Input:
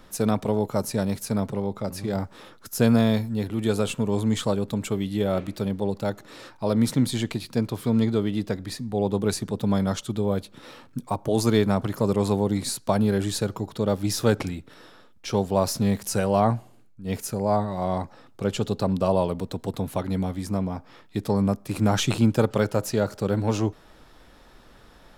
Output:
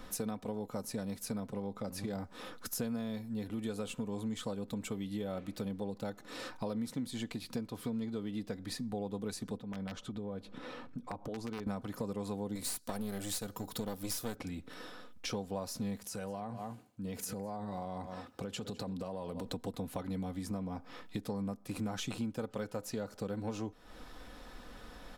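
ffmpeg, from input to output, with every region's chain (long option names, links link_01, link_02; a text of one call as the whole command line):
ffmpeg -i in.wav -filter_complex "[0:a]asettb=1/sr,asplit=3[link_01][link_02][link_03];[link_01]atrim=end=9.574[link_04];[link_02]atrim=start=9.57:end=11.67,asetpts=PTS-STARTPTS,afade=type=in:duration=0.004:curve=qsin,afade=type=out:start_time=2.096:duration=0.004:curve=qsin,acompressor=threshold=-40dB:ratio=2.5:attack=3.2:release=140:knee=1:detection=peak,aeval=exprs='(mod(21.1*val(0)+1,2)-1)/21.1':channel_layout=same,aemphasis=mode=reproduction:type=75kf[link_05];[link_03]atrim=start=11.666[link_06];[link_04][link_05]acrossfade=duration=0.004:curve1=hsin:curve2=qsin[link_07];[link_07][link_06]acrossfade=duration=0.004:curve1=qsin:curve2=hsin,asettb=1/sr,asplit=3[link_08][link_09][link_10];[link_08]atrim=end=12.554[link_11];[link_09]atrim=start=12.55:end=14.36,asetpts=PTS-STARTPTS,afade=type=in:duration=0.004:curve=qsin,afade=type=out:start_time=1.806:duration=0.004:curve=qsin,aemphasis=mode=production:type=50fm,aeval=exprs='clip(val(0),-1,0.0501)':channel_layout=same[link_12];[link_10]atrim=start=14.356[link_13];[link_11][link_12]acrossfade=duration=0.004:curve1=hsin:curve2=qsin[link_14];[link_14][link_13]acrossfade=duration=0.004:curve1=qsin:curve2=hsin,asettb=1/sr,asplit=3[link_15][link_16][link_17];[link_15]atrim=end=16.044[link_18];[link_16]atrim=start=16.04:end=19.46,asetpts=PTS-STARTPTS,afade=type=in:duration=0.004:curve=qsin,afade=type=out:start_time=3.416:duration=0.004:curve=qsin,aecho=1:1:202:0.119,atrim=end_sample=150822,acompressor=threshold=-33dB:ratio=5:attack=3.2:release=140:knee=1:detection=peak,highpass=45[link_19];[link_17]atrim=start=19.456[link_20];[link_18][link_19]acrossfade=duration=0.004:curve1=hsin:curve2=qsin[link_21];[link_21][link_20]acrossfade=duration=0.004:curve1=qsin:curve2=hsin,aecho=1:1:4:0.41,acompressor=threshold=-37dB:ratio=5" out.wav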